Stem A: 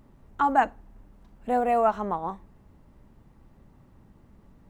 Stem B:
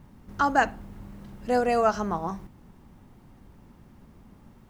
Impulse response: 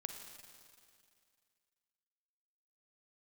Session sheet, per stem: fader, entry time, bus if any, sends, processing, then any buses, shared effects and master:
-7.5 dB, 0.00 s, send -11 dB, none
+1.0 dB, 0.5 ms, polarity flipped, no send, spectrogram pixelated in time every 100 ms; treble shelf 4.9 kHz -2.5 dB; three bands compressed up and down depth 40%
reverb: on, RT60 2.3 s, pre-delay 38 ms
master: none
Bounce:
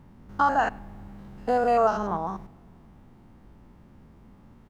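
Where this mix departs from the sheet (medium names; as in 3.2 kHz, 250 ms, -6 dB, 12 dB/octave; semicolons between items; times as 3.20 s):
stem B: missing three bands compressed up and down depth 40%; master: extra treble shelf 5.5 kHz -6 dB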